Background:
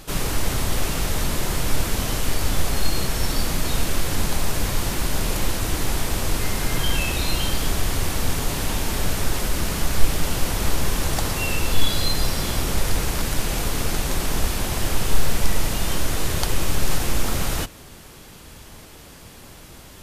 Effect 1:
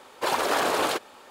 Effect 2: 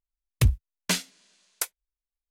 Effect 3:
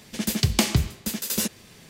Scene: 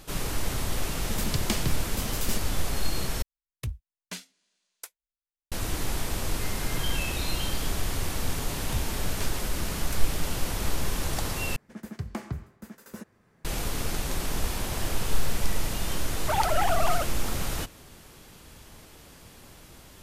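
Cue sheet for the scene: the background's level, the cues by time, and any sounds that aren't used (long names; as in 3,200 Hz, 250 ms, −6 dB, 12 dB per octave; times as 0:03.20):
background −6.5 dB
0:00.91: mix in 3 −8.5 dB
0:03.22: overwrite with 2 −13 dB
0:08.31: mix in 2 −13.5 dB
0:11.56: overwrite with 3 −12.5 dB + high shelf with overshoot 2,200 Hz −13 dB, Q 1.5
0:14.23: mix in 1 −14.5 dB + downward compressor, threshold −28 dBFS
0:16.06: mix in 1 −2 dB + three sine waves on the formant tracks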